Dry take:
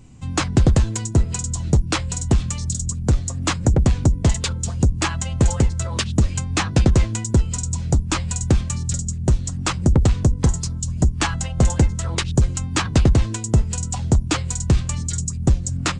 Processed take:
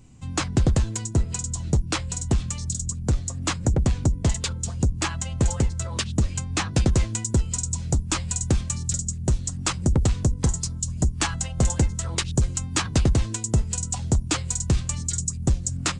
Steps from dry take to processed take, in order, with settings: treble shelf 5.7 kHz +4 dB, from 6.74 s +9 dB; trim -5 dB

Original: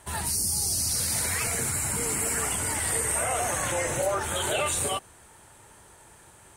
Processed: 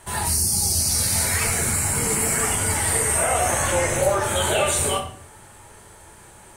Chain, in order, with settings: simulated room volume 69 m³, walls mixed, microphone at 0.69 m; trim +3.5 dB

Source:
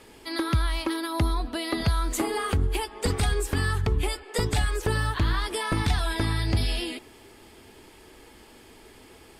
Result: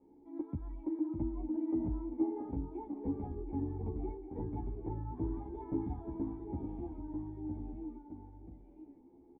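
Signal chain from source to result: ever faster or slower copies 573 ms, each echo -1 st, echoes 2, each echo -6 dB; cascade formant filter u; endless flanger 11.5 ms +0.31 Hz; trim +1 dB

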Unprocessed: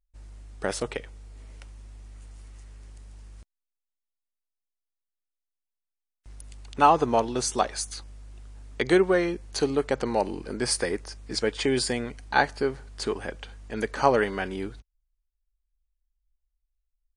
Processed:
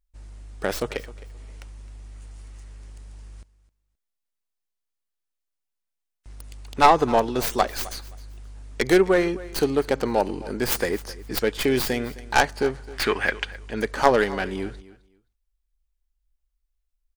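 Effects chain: tracing distortion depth 0.31 ms; 12.93–13.45 s: peaking EQ 2 kHz +15 dB 1.7 oct; feedback delay 262 ms, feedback 19%, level -19 dB; trim +3 dB

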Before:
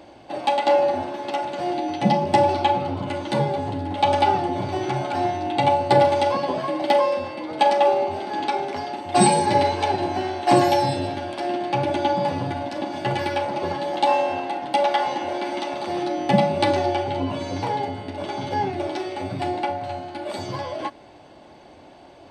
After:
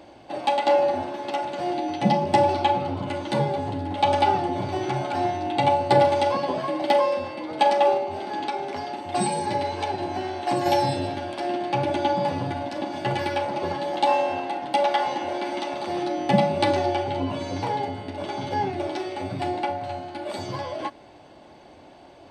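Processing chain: 7.97–10.66 s: compression 2:1, threshold -25 dBFS, peak gain reduction 8 dB; trim -1.5 dB

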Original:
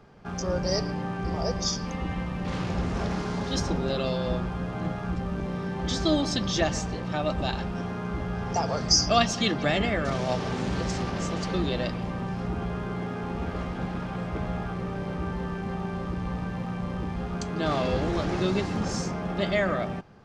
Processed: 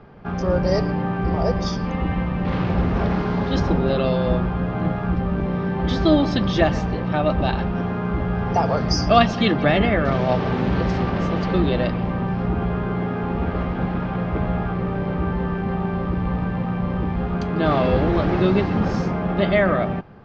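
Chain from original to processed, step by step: distance through air 290 m; trim +8.5 dB

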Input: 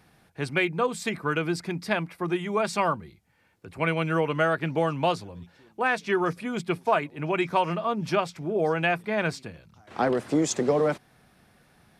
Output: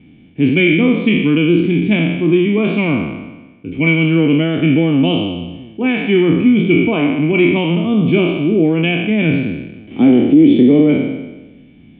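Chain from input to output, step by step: spectral sustain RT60 1.15 s; cascade formant filter i; loudness maximiser +24.5 dB; trim -1 dB

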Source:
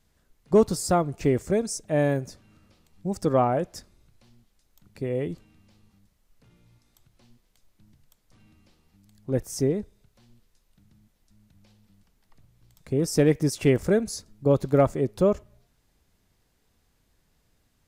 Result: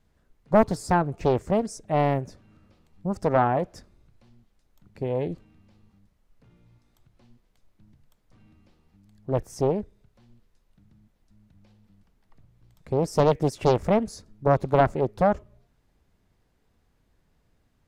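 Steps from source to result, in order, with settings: treble shelf 3 kHz -11 dB; loudspeaker Doppler distortion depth 0.91 ms; trim +1.5 dB

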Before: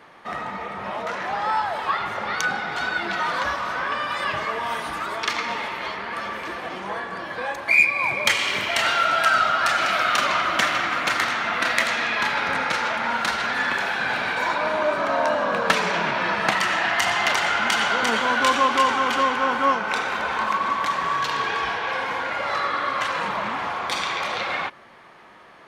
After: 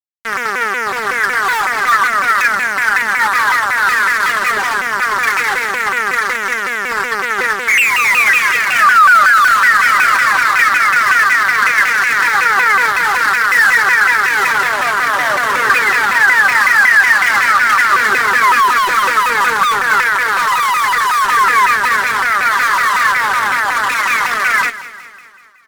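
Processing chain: reverberation RT60 0.60 s, pre-delay 3 ms, DRR 13 dB; robot voice 223 Hz; fuzz box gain 32 dB, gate -25 dBFS; bass shelf 69 Hz -6 dB; flange 0.15 Hz, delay 6.4 ms, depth 1.6 ms, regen +45%; high-order bell 1.6 kHz +11 dB 1 oct; feedback delay 200 ms, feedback 56%, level -15.5 dB; loudness maximiser +4.5 dB; vibrato with a chosen wave saw down 5.4 Hz, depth 250 cents; trim -1 dB

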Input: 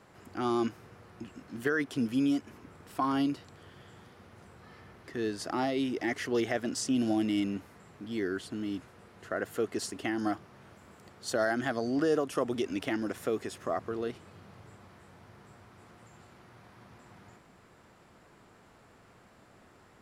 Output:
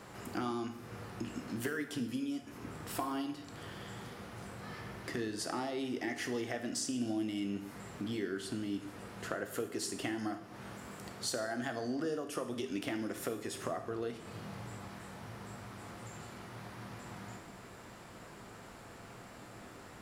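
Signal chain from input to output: treble shelf 5.3 kHz +5 dB; compression 6:1, threshold -42 dBFS, peak gain reduction 18 dB; plate-style reverb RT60 0.73 s, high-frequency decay 0.9×, DRR 6 dB; trim +6 dB

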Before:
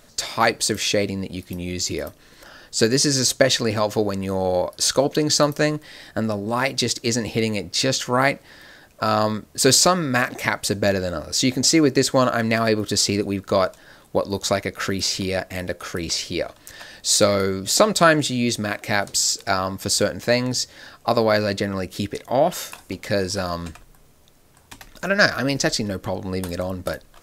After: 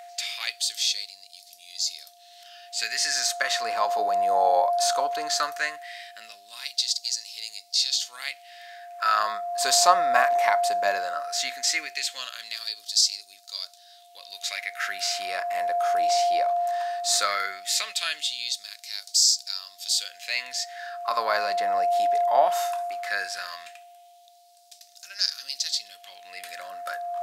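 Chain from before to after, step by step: whistle 700 Hz -23 dBFS; LFO high-pass sine 0.17 Hz 820–4800 Hz; harmonic-percussive split harmonic +8 dB; trim -8.5 dB

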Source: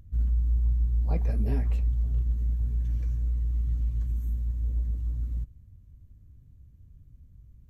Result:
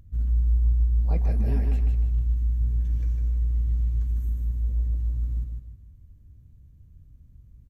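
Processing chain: 2.09–2.63 s: peaking EQ 530 Hz -12 dB 1.2 oct; feedback delay 153 ms, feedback 37%, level -5 dB

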